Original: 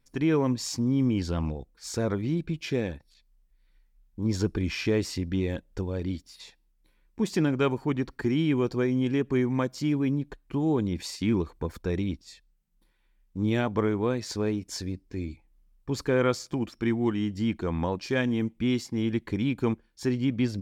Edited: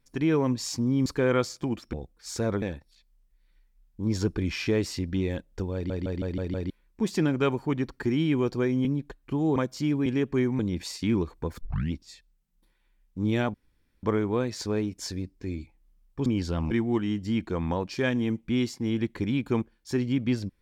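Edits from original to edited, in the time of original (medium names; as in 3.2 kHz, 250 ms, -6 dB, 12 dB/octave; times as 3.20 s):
1.06–1.51 s: swap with 15.96–16.83 s
2.20–2.81 s: delete
5.93 s: stutter in place 0.16 s, 6 plays
9.04–9.57 s: swap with 10.07–10.78 s
11.80 s: tape start 0.32 s
13.73 s: insert room tone 0.49 s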